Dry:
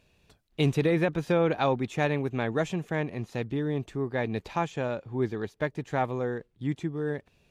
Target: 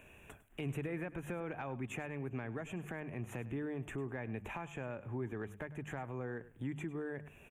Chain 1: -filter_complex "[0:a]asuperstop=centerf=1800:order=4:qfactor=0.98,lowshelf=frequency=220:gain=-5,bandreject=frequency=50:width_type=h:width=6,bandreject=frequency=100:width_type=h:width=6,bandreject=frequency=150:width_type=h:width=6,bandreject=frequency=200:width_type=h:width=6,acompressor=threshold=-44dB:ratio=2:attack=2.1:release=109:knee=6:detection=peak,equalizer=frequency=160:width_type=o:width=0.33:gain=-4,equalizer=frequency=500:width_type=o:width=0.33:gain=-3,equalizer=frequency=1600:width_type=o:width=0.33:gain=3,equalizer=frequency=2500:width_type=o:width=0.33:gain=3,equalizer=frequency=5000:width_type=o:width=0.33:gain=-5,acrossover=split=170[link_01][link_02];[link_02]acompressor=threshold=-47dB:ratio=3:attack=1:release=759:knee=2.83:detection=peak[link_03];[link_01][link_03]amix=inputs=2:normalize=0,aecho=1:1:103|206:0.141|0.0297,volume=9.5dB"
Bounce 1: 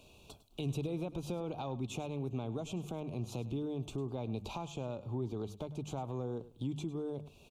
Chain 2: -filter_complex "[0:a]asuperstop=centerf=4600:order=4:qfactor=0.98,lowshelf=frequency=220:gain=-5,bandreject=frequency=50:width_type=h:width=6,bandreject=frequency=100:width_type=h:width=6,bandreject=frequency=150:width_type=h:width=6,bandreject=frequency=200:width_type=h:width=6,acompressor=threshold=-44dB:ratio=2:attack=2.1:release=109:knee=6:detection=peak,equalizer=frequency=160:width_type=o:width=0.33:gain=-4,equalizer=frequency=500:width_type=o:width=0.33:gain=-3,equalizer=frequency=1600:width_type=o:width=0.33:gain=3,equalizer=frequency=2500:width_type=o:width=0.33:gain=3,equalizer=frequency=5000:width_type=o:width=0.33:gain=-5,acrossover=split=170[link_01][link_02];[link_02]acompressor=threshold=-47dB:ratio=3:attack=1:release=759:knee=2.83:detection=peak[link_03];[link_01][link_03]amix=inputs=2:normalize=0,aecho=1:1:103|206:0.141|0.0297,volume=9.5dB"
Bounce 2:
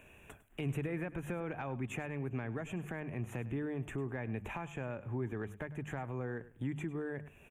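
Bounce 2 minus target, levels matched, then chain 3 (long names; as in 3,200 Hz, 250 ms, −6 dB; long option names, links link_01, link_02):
downward compressor: peak gain reduction −4 dB
-filter_complex "[0:a]asuperstop=centerf=4600:order=4:qfactor=0.98,lowshelf=frequency=220:gain=-5,bandreject=frequency=50:width_type=h:width=6,bandreject=frequency=100:width_type=h:width=6,bandreject=frequency=150:width_type=h:width=6,bandreject=frequency=200:width_type=h:width=6,acompressor=threshold=-52dB:ratio=2:attack=2.1:release=109:knee=6:detection=peak,equalizer=frequency=160:width_type=o:width=0.33:gain=-4,equalizer=frequency=500:width_type=o:width=0.33:gain=-3,equalizer=frequency=1600:width_type=o:width=0.33:gain=3,equalizer=frequency=2500:width_type=o:width=0.33:gain=3,equalizer=frequency=5000:width_type=o:width=0.33:gain=-5,acrossover=split=170[link_01][link_02];[link_02]acompressor=threshold=-47dB:ratio=3:attack=1:release=759:knee=2.83:detection=peak[link_03];[link_01][link_03]amix=inputs=2:normalize=0,aecho=1:1:103|206:0.141|0.0297,volume=9.5dB"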